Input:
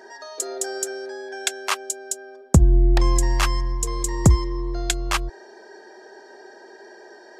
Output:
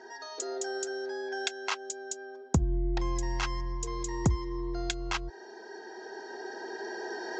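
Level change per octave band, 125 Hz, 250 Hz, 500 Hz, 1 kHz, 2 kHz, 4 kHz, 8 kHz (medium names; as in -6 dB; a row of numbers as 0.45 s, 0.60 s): -12.0 dB, -8.5 dB, -5.5 dB, -7.5 dB, -6.0 dB, -8.0 dB, -11.5 dB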